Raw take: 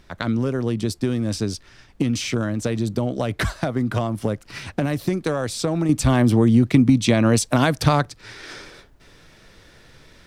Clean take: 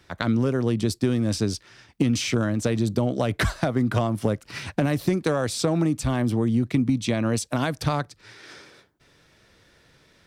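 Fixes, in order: expander -42 dBFS, range -21 dB; gain 0 dB, from 5.89 s -7 dB

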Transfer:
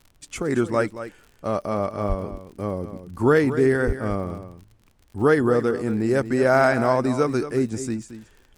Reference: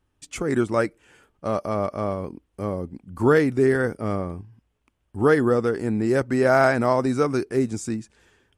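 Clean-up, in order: de-click; de-plosive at 2.08/3.86; expander -47 dBFS, range -21 dB; inverse comb 0.225 s -12 dB

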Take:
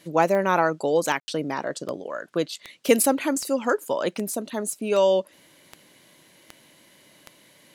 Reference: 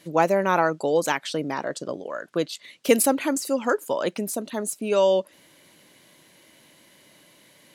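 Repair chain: de-click; room tone fill 1.2–1.28

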